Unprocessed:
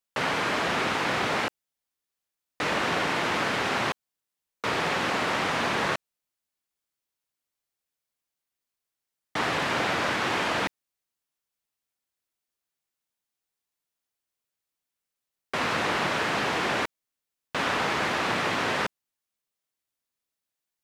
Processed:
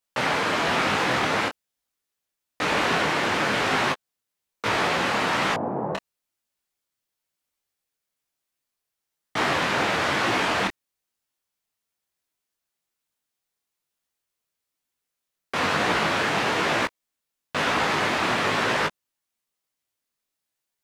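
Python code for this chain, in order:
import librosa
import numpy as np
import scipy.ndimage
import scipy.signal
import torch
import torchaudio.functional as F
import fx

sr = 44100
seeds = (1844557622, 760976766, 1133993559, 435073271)

y = fx.cheby1_bandpass(x, sr, low_hz=110.0, high_hz=820.0, order=3, at=(5.54, 5.95))
y = fx.detune_double(y, sr, cents=37)
y = F.gain(torch.from_numpy(y), 7.0).numpy()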